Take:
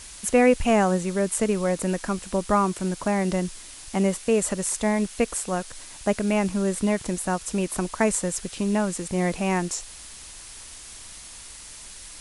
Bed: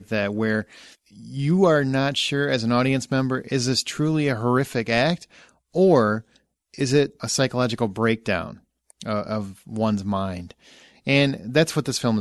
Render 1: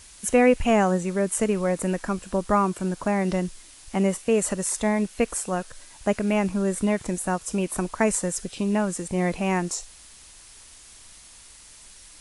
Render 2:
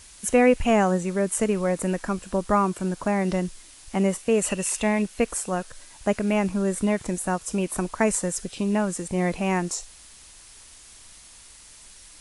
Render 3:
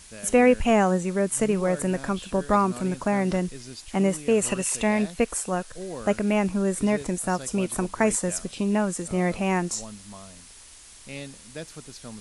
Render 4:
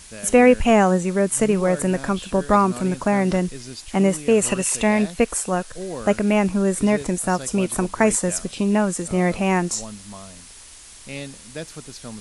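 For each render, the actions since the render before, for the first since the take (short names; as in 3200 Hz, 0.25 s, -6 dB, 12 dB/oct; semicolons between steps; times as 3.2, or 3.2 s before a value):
noise print and reduce 6 dB
4.43–5.02 bell 2700 Hz +14.5 dB 0.31 oct
add bed -19.5 dB
gain +4.5 dB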